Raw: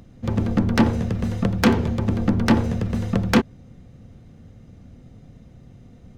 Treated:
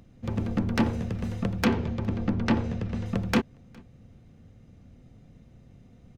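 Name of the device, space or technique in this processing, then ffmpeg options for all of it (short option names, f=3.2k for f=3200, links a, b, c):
ducked delay: -filter_complex "[0:a]asettb=1/sr,asplit=3[a][b][c];[a]atrim=end=1.654[d];[b]atrim=start=1.65:end=3.06,asetpts=PTS-STARTPTS,afade=t=in:d=0.004:c=qsin,afade=t=out:st=1.406:d=0.004:c=qsin,lowpass=5.7k[e];[c]atrim=start=3.056[f];[d][e]acrossfade=d=0.004:c1=hsin:c2=qsin[g];[g][f]acrossfade=d=0.004:c1=qsin:c2=hsin,asplit=3[h][i][j];[i]adelay=411,volume=-8dB[k];[j]apad=whole_len=290421[l];[k][l]sidechaincompress=threshold=-38dB:ratio=6:attack=20:release=1220[m];[h][m]amix=inputs=2:normalize=0,equalizer=f=2.5k:w=3.3:g=3,volume=-7dB"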